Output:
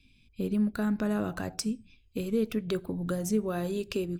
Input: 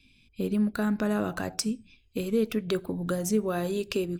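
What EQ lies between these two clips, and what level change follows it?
bass shelf 190 Hz +6 dB; -4.0 dB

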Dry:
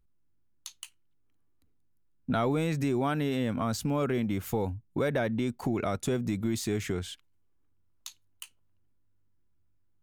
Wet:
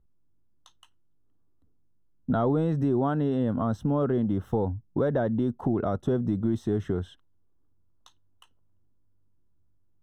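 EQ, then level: boxcar filter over 19 samples; +4.0 dB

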